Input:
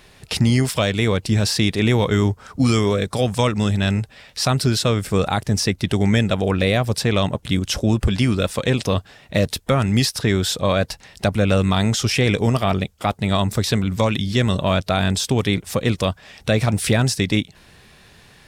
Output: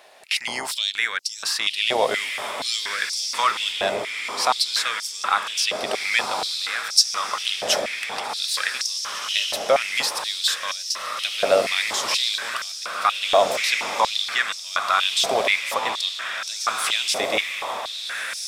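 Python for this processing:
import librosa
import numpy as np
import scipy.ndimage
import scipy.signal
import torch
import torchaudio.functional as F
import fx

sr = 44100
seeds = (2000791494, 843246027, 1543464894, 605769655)

y = fx.octave_divider(x, sr, octaves=2, level_db=4.0)
y = fx.over_compress(y, sr, threshold_db=-20.0, ratio=-1.0, at=(6.26, 8.75))
y = fx.echo_diffused(y, sr, ms=1715, feedback_pct=54, wet_db=-4.5)
y = fx.filter_held_highpass(y, sr, hz=4.2, low_hz=650.0, high_hz=5400.0)
y = y * librosa.db_to_amplitude(-2.5)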